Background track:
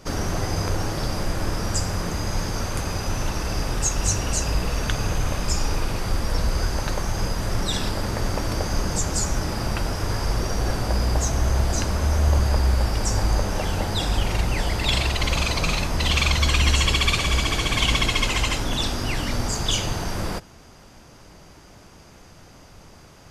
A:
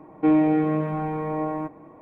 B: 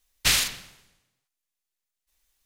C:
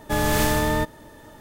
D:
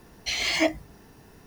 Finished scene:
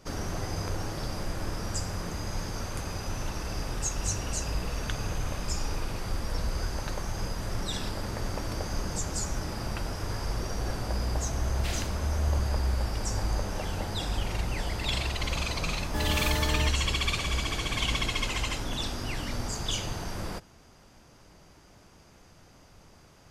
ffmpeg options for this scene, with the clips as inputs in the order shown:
ffmpeg -i bed.wav -i cue0.wav -i cue1.wav -i cue2.wav -filter_complex "[0:a]volume=-8dB[link_01];[2:a]acrossover=split=3600[link_02][link_03];[link_03]acompressor=threshold=-27dB:ratio=4:attack=1:release=60[link_04];[link_02][link_04]amix=inputs=2:normalize=0,atrim=end=2.45,asetpts=PTS-STARTPTS,volume=-15dB,afade=type=in:duration=0.004:curve=hsin,afade=type=out:start_time=2.446:duration=0.004:curve=hsin,adelay=11390[link_05];[3:a]atrim=end=1.4,asetpts=PTS-STARTPTS,volume=-10.5dB,afade=type=in:duration=0.004:curve=hsin,afade=type=out:start_time=1.396:duration=0.004:curve=hsin,adelay=15840[link_06];[link_01][link_05][link_06]amix=inputs=3:normalize=0" out.wav

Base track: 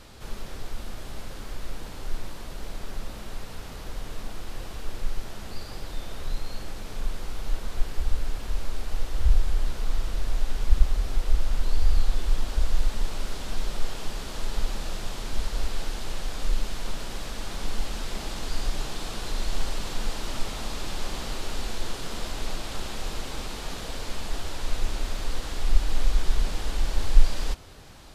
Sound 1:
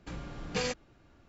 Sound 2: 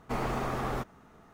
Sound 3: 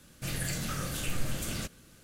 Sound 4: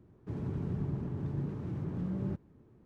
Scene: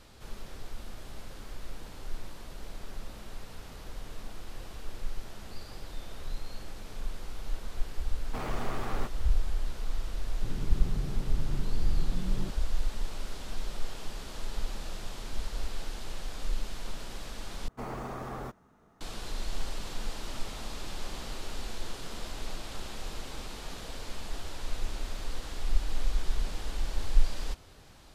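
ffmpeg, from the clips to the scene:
ffmpeg -i bed.wav -i cue0.wav -i cue1.wav -i cue2.wav -i cue3.wav -filter_complex "[2:a]asplit=2[link_01][link_02];[0:a]volume=-6.5dB[link_03];[link_01]asoftclip=type=tanh:threshold=-33dB[link_04];[link_02]equalizer=frequency=2600:width_type=o:width=1.2:gain=-4[link_05];[link_03]asplit=2[link_06][link_07];[link_06]atrim=end=17.684[link_08];[link_05]atrim=end=1.33,asetpts=PTS-STARTPTS,volume=-6dB[link_09];[link_07]atrim=start=19.006[link_10];[link_04]atrim=end=1.33,asetpts=PTS-STARTPTS,afade=type=in:duration=0.004:curve=hsin,afade=type=out:start_time=1.326:duration=0.004:curve=hsin,adelay=8240[link_11];[4:a]atrim=end=2.85,asetpts=PTS-STARTPTS,volume=-3.5dB,afade=type=in:duration=0.004:curve=hsin,afade=type=out:start_time=2.846:duration=0.004:curve=hsin,adelay=10150[link_12];[link_08][link_09]acrossfade=duration=0.004:curve1=hsin:curve2=hsin[link_13];[link_13][link_10]acrossfade=duration=0.004:curve1=hsin:curve2=hsin[link_14];[link_14][link_11][link_12]amix=inputs=3:normalize=0" out.wav

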